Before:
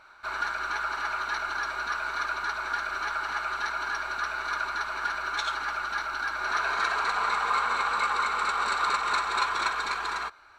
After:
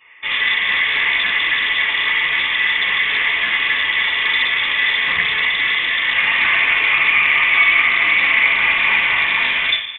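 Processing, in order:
gate on every frequency bin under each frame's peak −30 dB strong
high-pass filter 55 Hz 6 dB per octave
parametric band 150 Hz −3.5 dB 0.55 octaves
mains-hum notches 60/120/180/240 Hz
speed change +6%
in parallel at −3.5 dB: comparator with hysteresis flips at −35 dBFS
on the sum: slap from a distant wall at 91 metres, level −19 dB
convolution reverb RT60 0.70 s, pre-delay 4 ms, DRR −11.5 dB
voice inversion scrambler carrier 3,500 Hz
highs frequency-modulated by the lows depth 0.13 ms
level −6 dB

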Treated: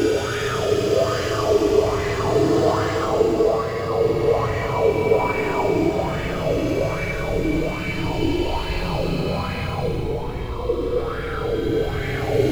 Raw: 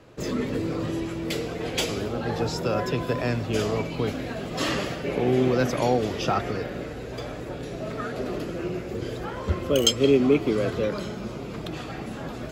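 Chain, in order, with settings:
wind on the microphone 110 Hz −31 dBFS
in parallel at −12 dB: log-companded quantiser 4 bits
on the sum: parametric band 220 Hz −11.5 dB 0.41 octaves
compressor whose output falls as the input rises −26 dBFS, ratio −1
extreme stretch with random phases 25×, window 0.05 s, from 0:03.59
auto-filter bell 1.2 Hz 310–1,900 Hz +12 dB
level +1.5 dB

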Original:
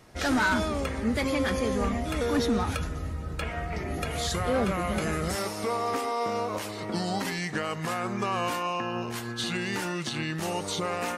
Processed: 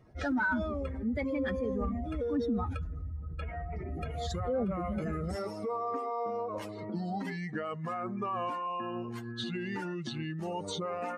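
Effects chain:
expanding power law on the bin magnitudes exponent 1.9
level −5 dB

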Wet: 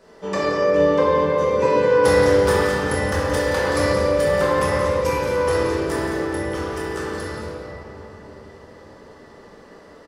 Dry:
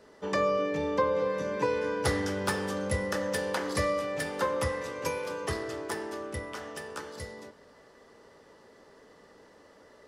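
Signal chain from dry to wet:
on a send: single-tap delay 176 ms −9.5 dB
on the sum: rectangular room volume 190 cubic metres, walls hard, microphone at 1.1 metres
level +2 dB

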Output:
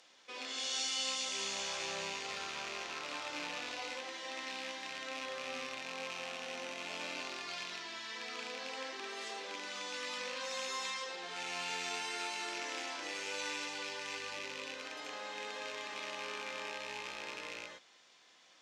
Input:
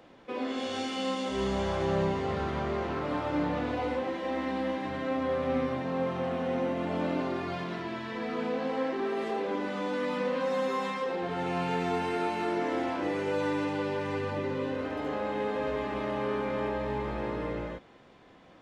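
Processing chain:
loose part that buzzes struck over −36 dBFS, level −31 dBFS
resonant band-pass 6,200 Hz, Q 1.8
level +11.5 dB

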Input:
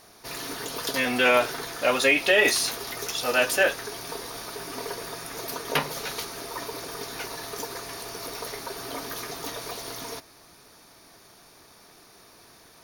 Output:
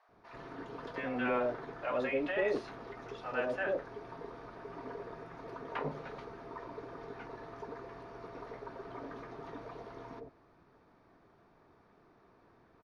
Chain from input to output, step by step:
soft clipping −10 dBFS, distortion −22 dB
low-pass filter 1,200 Hz 12 dB per octave
multiband delay without the direct sound highs, lows 90 ms, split 680 Hz
level −6 dB

